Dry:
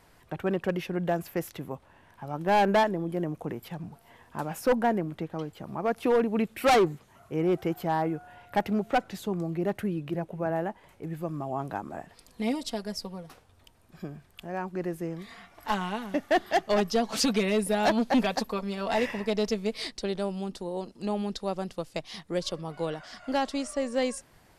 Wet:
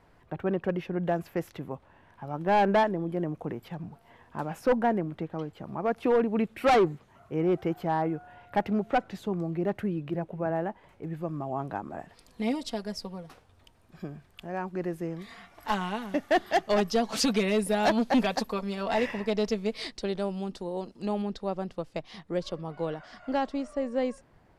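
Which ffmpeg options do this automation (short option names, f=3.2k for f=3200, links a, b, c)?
-af "asetnsamples=n=441:p=0,asendcmd='1.03 lowpass f 2800;11.99 lowpass f 5600;15.21 lowpass f 11000;18.83 lowpass f 5000;21.22 lowpass f 1900;23.46 lowpass f 1100',lowpass=f=1.6k:p=1"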